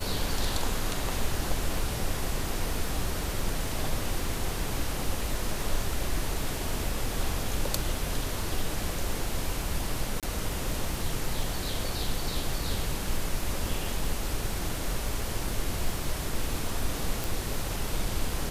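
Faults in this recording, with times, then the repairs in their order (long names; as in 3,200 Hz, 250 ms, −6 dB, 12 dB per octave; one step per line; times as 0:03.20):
surface crackle 45 per second −36 dBFS
0:10.20–0:10.23: drop-out 27 ms
0:17.24: click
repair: click removal
repair the gap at 0:10.20, 27 ms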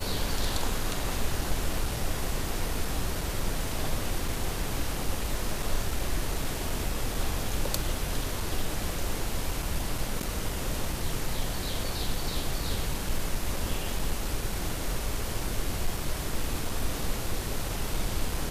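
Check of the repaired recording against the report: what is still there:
none of them is left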